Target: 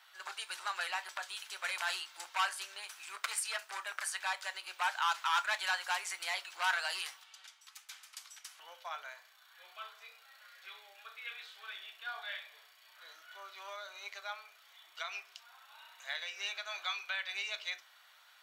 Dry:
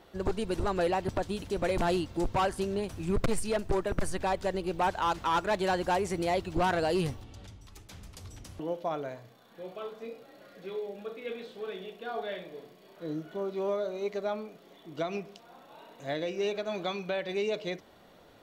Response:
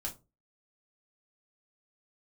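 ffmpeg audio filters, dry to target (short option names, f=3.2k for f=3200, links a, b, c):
-filter_complex "[0:a]highpass=f=1.2k:w=0.5412,highpass=f=1.2k:w=1.3066,asplit=2[a][b];[1:a]atrim=start_sample=2205,lowshelf=f=180:g=7[c];[b][c]afir=irnorm=-1:irlink=0,volume=-5.5dB[d];[a][d]amix=inputs=2:normalize=0"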